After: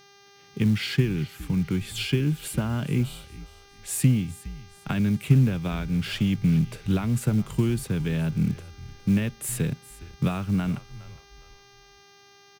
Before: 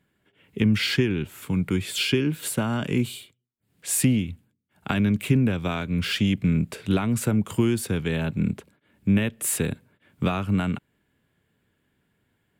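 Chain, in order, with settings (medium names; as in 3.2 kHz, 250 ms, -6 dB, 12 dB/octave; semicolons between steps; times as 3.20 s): mains buzz 400 Hz, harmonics 16, -49 dBFS -2 dB/octave; companded quantiser 6-bit; peaking EQ 140 Hz +10.5 dB 0.79 oct; frequency-shifting echo 412 ms, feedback 34%, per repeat -74 Hz, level -17.5 dB; trim -5.5 dB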